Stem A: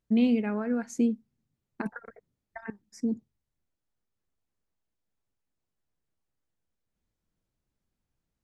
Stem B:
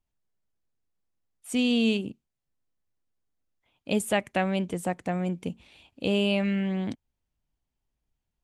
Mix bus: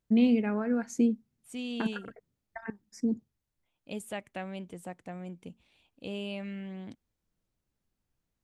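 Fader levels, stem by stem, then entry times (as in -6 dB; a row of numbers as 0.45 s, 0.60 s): 0.0 dB, -12.5 dB; 0.00 s, 0.00 s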